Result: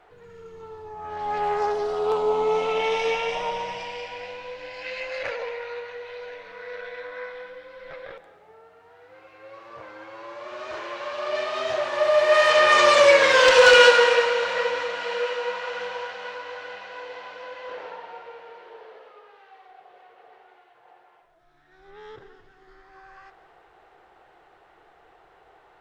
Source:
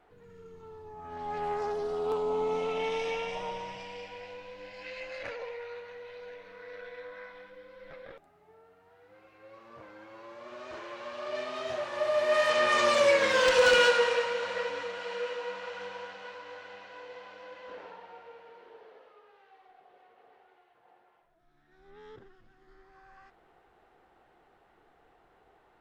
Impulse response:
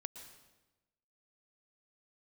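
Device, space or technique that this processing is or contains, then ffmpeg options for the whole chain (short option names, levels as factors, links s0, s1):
filtered reverb send: -filter_complex "[0:a]asplit=2[s0][s1];[s1]highpass=f=230:w=0.5412,highpass=f=230:w=1.3066,lowpass=8800[s2];[1:a]atrim=start_sample=2205[s3];[s2][s3]afir=irnorm=-1:irlink=0,volume=1.41[s4];[s0][s4]amix=inputs=2:normalize=0,volume=1.5"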